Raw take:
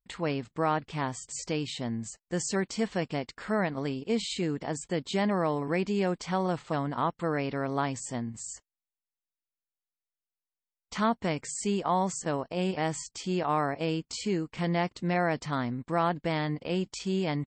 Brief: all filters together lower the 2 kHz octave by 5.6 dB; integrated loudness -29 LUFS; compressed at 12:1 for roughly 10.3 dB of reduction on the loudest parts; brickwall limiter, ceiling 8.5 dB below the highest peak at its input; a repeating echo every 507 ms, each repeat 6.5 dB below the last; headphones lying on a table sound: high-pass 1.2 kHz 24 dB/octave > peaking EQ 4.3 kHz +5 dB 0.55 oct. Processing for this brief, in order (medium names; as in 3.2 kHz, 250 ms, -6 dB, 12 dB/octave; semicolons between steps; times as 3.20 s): peaking EQ 2 kHz -7 dB; compression 12:1, threshold -33 dBFS; peak limiter -31.5 dBFS; high-pass 1.2 kHz 24 dB/octave; peaking EQ 4.3 kHz +5 dB 0.55 oct; feedback delay 507 ms, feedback 47%, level -6.5 dB; trim +15.5 dB